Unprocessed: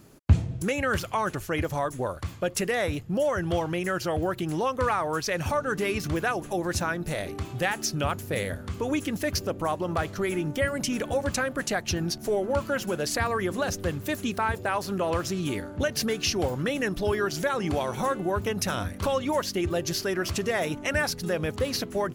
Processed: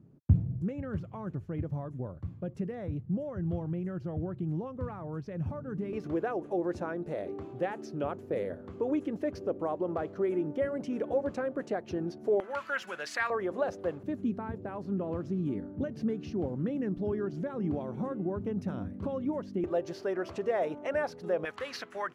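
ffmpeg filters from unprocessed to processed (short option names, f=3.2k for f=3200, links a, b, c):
-af "asetnsamples=n=441:p=0,asendcmd='5.93 bandpass f 410;12.4 bandpass f 1700;13.3 bandpass f 580;14.03 bandpass f 220;19.64 bandpass f 580;21.45 bandpass f 1500',bandpass=f=150:t=q:w=1.3:csg=0"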